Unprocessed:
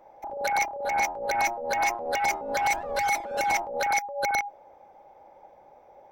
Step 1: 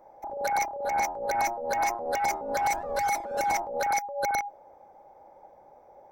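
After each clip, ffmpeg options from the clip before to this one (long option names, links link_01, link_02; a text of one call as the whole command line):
ffmpeg -i in.wav -af "equalizer=frequency=2900:width=1.3:gain=-9.5" out.wav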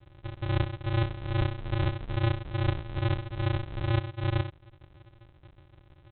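ffmpeg -i in.wav -af "aecho=1:1:6.3:0.74,aresample=8000,acrusher=samples=35:mix=1:aa=0.000001,aresample=44100,volume=-3.5dB" out.wav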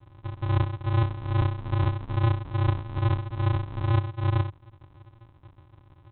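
ffmpeg -i in.wav -af "equalizer=frequency=100:width_type=o:width=0.67:gain=9,equalizer=frequency=250:width_type=o:width=0.67:gain=9,equalizer=frequency=1000:width_type=o:width=0.67:gain=11,volume=-3.5dB" out.wav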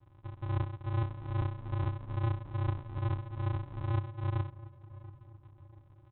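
ffmpeg -i in.wav -filter_complex "[0:a]lowpass=frequency=2600:poles=1,asplit=2[link_01][link_02];[link_02]adelay=685,lowpass=frequency=1200:poles=1,volume=-17dB,asplit=2[link_03][link_04];[link_04]adelay=685,lowpass=frequency=1200:poles=1,volume=0.51,asplit=2[link_05][link_06];[link_06]adelay=685,lowpass=frequency=1200:poles=1,volume=0.51,asplit=2[link_07][link_08];[link_08]adelay=685,lowpass=frequency=1200:poles=1,volume=0.51[link_09];[link_01][link_03][link_05][link_07][link_09]amix=inputs=5:normalize=0,volume=-8.5dB" out.wav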